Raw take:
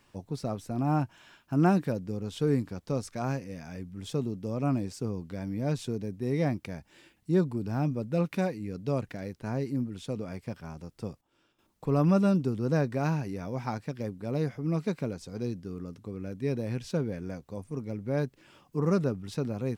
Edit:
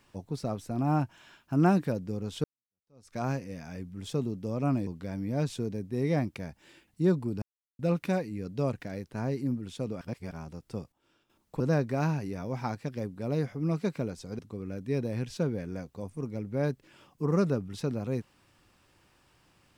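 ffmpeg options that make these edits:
-filter_complex "[0:a]asplit=9[s0][s1][s2][s3][s4][s5][s6][s7][s8];[s0]atrim=end=2.44,asetpts=PTS-STARTPTS,afade=t=out:st=2.436:d=0.004:c=hsin[s9];[s1]atrim=start=2.44:end=4.872,asetpts=PTS-STARTPTS,afade=t=in:d=0.72:c=exp[s10];[s2]atrim=start=5.158:end=7.71,asetpts=PTS-STARTPTS,afade=t=out:st=2.548:d=0.004:c=hsin[s11];[s3]atrim=start=7.71:end=8.08,asetpts=PTS-STARTPTS,volume=0[s12];[s4]atrim=start=8.08:end=10.302,asetpts=PTS-STARTPTS,afade=t=in:d=0.004:c=hsin[s13];[s5]atrim=start=10.298:end=10.602,asetpts=PTS-STARTPTS,areverse[s14];[s6]atrim=start=10.598:end=11.892[s15];[s7]atrim=start=12.628:end=15.422[s16];[s8]atrim=start=15.928[s17];[s9][s10]concat=n=2:v=0:a=1[s18];[s11][s12][s13]concat=n=3:v=0:a=1[s19];[s18][s19]acrossfade=d=0.004:c1=hsin:c2=hsin[s20];[s20][s14]acrossfade=d=0.004:c1=hsin:c2=hsin[s21];[s21][s15]acrossfade=d=0.004:c1=hsin:c2=hsin[s22];[s22][s16]acrossfade=d=0.004:c1=hsin:c2=hsin[s23];[s23][s17]acrossfade=d=0.004:c1=hsin:c2=hsin"

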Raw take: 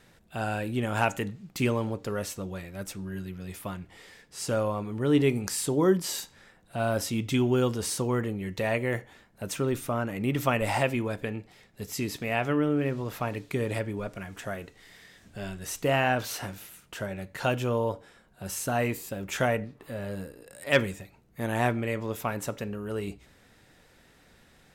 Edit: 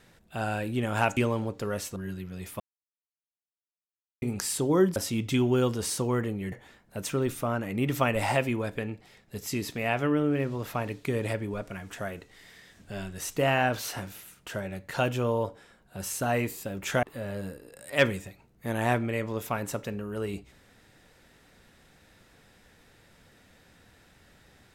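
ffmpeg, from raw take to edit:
-filter_complex "[0:a]asplit=8[s0][s1][s2][s3][s4][s5][s6][s7];[s0]atrim=end=1.172[s8];[s1]atrim=start=1.618:end=2.412[s9];[s2]atrim=start=3.038:end=3.68,asetpts=PTS-STARTPTS,afade=t=out:st=0.638:d=0.004:c=hsin[s10];[s3]atrim=start=3.68:end=5.3,asetpts=PTS-STARTPTS,volume=0[s11];[s4]atrim=start=5.3:end=6.042,asetpts=PTS-STARTPTS,afade=t=in:d=0.004:c=hsin[s12];[s5]atrim=start=6.958:end=8.522[s13];[s6]atrim=start=8.978:end=19.492[s14];[s7]atrim=start=19.768[s15];[s8][s9]acrossfade=d=0.004:c1=hsin:c2=hsin[s16];[s10][s11][s12]concat=n=3:v=0:a=1[s17];[s16][s17]acrossfade=d=0.004:c1=hsin:c2=hsin[s18];[s18][s13]acrossfade=d=0.004:c1=hsin:c2=hsin[s19];[s19][s14]acrossfade=d=0.004:c1=hsin:c2=hsin[s20];[s20][s15]acrossfade=d=0.004:c1=hsin:c2=hsin"

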